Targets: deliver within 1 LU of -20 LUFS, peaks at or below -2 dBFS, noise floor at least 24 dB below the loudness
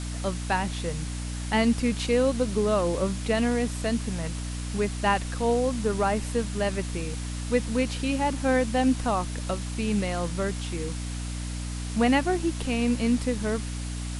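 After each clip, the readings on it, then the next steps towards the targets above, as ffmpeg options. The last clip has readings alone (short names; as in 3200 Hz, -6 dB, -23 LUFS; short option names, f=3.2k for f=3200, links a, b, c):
hum 60 Hz; harmonics up to 300 Hz; hum level -30 dBFS; noise floor -33 dBFS; noise floor target -51 dBFS; loudness -27.0 LUFS; peak -10.0 dBFS; loudness target -20.0 LUFS
-> -af "bandreject=f=60:t=h:w=4,bandreject=f=120:t=h:w=4,bandreject=f=180:t=h:w=4,bandreject=f=240:t=h:w=4,bandreject=f=300:t=h:w=4"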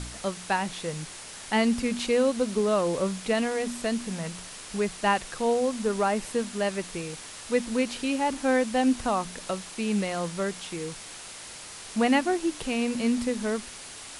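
hum none; noise floor -43 dBFS; noise floor target -52 dBFS
-> -af "afftdn=nr=9:nf=-43"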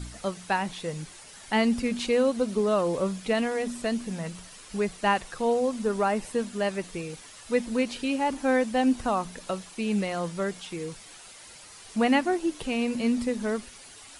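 noise floor -48 dBFS; noise floor target -52 dBFS
-> -af "afftdn=nr=6:nf=-48"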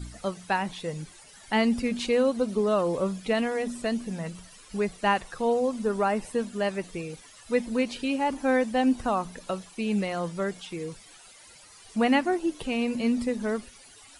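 noise floor -52 dBFS; loudness -28.0 LUFS; peak -10.5 dBFS; loudness target -20.0 LUFS
-> -af "volume=8dB"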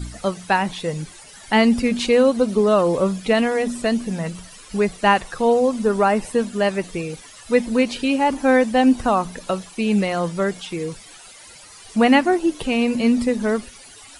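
loudness -20.0 LUFS; peak -2.5 dBFS; noise floor -44 dBFS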